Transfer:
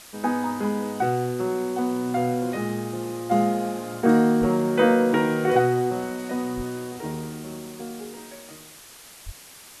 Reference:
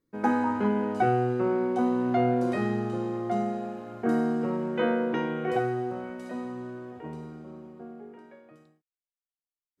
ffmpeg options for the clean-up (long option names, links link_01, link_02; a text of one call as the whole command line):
ffmpeg -i in.wav -filter_complex "[0:a]asplit=3[link_01][link_02][link_03];[link_01]afade=type=out:start_time=4.4:duration=0.02[link_04];[link_02]highpass=frequency=140:width=0.5412,highpass=frequency=140:width=1.3066,afade=type=in:start_time=4.4:duration=0.02,afade=type=out:start_time=4.52:duration=0.02[link_05];[link_03]afade=type=in:start_time=4.52:duration=0.02[link_06];[link_04][link_05][link_06]amix=inputs=3:normalize=0,asplit=3[link_07][link_08][link_09];[link_07]afade=type=out:start_time=6.56:duration=0.02[link_10];[link_08]highpass=frequency=140:width=0.5412,highpass=frequency=140:width=1.3066,afade=type=in:start_time=6.56:duration=0.02,afade=type=out:start_time=6.68:duration=0.02[link_11];[link_09]afade=type=in:start_time=6.68:duration=0.02[link_12];[link_10][link_11][link_12]amix=inputs=3:normalize=0,asplit=3[link_13][link_14][link_15];[link_13]afade=type=out:start_time=9.25:duration=0.02[link_16];[link_14]highpass=frequency=140:width=0.5412,highpass=frequency=140:width=1.3066,afade=type=in:start_time=9.25:duration=0.02,afade=type=out:start_time=9.37:duration=0.02[link_17];[link_15]afade=type=in:start_time=9.37:duration=0.02[link_18];[link_16][link_17][link_18]amix=inputs=3:normalize=0,afwtdn=0.0063,asetnsamples=nb_out_samples=441:pad=0,asendcmd='3.31 volume volume -7.5dB',volume=0dB" out.wav